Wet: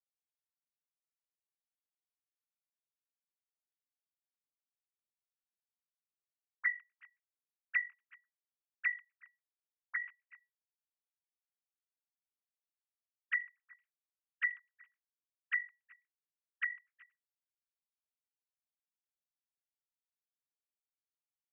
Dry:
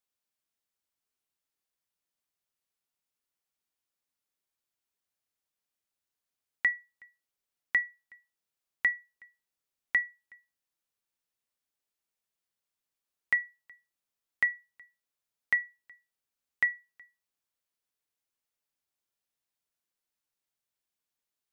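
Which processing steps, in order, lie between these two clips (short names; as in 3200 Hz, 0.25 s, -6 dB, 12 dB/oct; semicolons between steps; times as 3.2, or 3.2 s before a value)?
sine-wave speech; gain -7 dB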